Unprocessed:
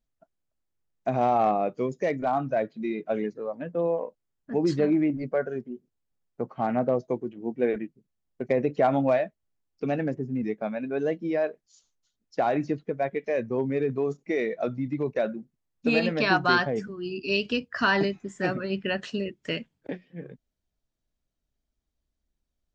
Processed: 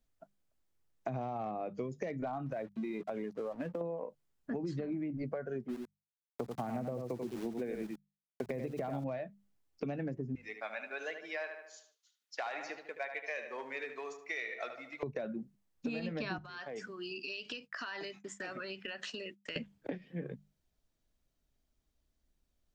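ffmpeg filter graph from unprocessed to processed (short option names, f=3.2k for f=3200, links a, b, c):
-filter_complex "[0:a]asettb=1/sr,asplit=3[a][b][c];[a]atrim=end=2.464[d];[b]atrim=start=2.46:end=3.81,asetpts=PTS-STARTPTS,afade=t=in:d=0.004:c=qsin,afade=t=out:st=1.346:d=0.004:c=qsin,aeval=exprs='sgn(val(0))*max(abs(val(0))-0.002,0)':c=same,acompressor=threshold=-32dB:ratio=6:attack=3.2:release=140:knee=1:detection=peak[e];[c]atrim=start=3.806[f];[d][e]acrossfade=d=0.004:c1=hsin:c2=qsin[g];[g][f]acrossfade=d=0.004:c1=qsin:c2=hsin,asettb=1/sr,asplit=3[h][i][j];[h]atrim=end=5.684[k];[i]atrim=start=5.68:end=9.04,asetpts=PTS-STARTPTS,afade=t=in:d=0.004:c=qsin,afade=t=out:st=3.356:d=0.004:c=qsin,aeval=exprs='val(0)*gte(abs(val(0)),0.00708)':c=same,aecho=1:1:88:0.447,atrim=end_sample=148176,adynamicequalizer=threshold=0.00562:dfrequency=3400:dqfactor=0.7:tfrequency=3400:tqfactor=0.7:attack=5:release=100:ratio=0.375:range=2:mode=boostabove:tftype=highshelf[l];[j]atrim=start=9.036[m];[k][l]acrossfade=d=0.004:c1=hsin:c2=qsin[n];[n][m]acrossfade=d=0.004:c1=qsin:c2=hsin,asettb=1/sr,asplit=3[o][p][q];[o]atrim=end=10.354[r];[p]atrim=start=10.35:end=15.03,asetpts=PTS-STARTPTS,afade=t=in:d=0.004:c=qsin,afade=t=out:st=4.676:d=0.004:c=qsin,highpass=1.4k,asplit=2[s][t];[t]adelay=75,lowpass=f=3.2k:p=1,volume=-8.5dB,asplit=2[u][v];[v]adelay=75,lowpass=f=3.2k:p=1,volume=0.52,asplit=2[w][x];[x]adelay=75,lowpass=f=3.2k:p=1,volume=0.52,asplit=2[y][z];[z]adelay=75,lowpass=f=3.2k:p=1,volume=0.52,asplit=2[aa][ab];[ab]adelay=75,lowpass=f=3.2k:p=1,volume=0.52,asplit=2[ac][ad];[ad]adelay=75,lowpass=f=3.2k:p=1,volume=0.52[ae];[s][u][w][y][aa][ac][ae]amix=inputs=7:normalize=0,atrim=end_sample=206388[af];[q]atrim=start=15.026[ag];[r][af]acrossfade=d=0.004:c1=hsin:c2=qsin[ah];[ah][ag]acrossfade=d=0.004:c1=qsin:c2=hsin,asettb=1/sr,asplit=3[ai][aj][ak];[ai]atrim=end=16.384[al];[aj]atrim=start=16.38:end=19.56,asetpts=PTS-STARTPTS,afade=t=in:d=0.004:c=qsin,afade=t=out:st=3.176:d=0.004:c=qsin,agate=range=-33dB:threshold=-43dB:ratio=3:release=100:detection=peak,highpass=f=1.2k:p=1,acompressor=threshold=-40dB:ratio=16:attack=3.2:release=140:knee=1:detection=peak[am];[ak]atrim=start=19.556[an];[al][am]acrossfade=d=0.004:c1=hsin:c2=qsin[ao];[ao][an]acrossfade=d=0.004:c1=qsin:c2=hsin,acrossover=split=180[ap][aq];[aq]acompressor=threshold=-32dB:ratio=4[ar];[ap][ar]amix=inputs=2:normalize=0,bandreject=f=50:t=h:w=6,bandreject=f=100:t=h:w=6,bandreject=f=150:t=h:w=6,bandreject=f=200:t=h:w=6,acompressor=threshold=-38dB:ratio=6,volume=3dB"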